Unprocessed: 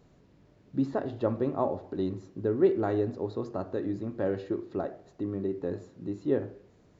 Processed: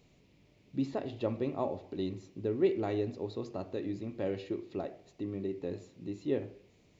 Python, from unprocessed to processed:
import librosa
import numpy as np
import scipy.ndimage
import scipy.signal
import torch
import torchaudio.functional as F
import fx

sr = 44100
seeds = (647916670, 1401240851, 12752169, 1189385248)

y = fx.high_shelf_res(x, sr, hz=1900.0, db=6.0, q=3.0)
y = F.gain(torch.from_numpy(y), -4.5).numpy()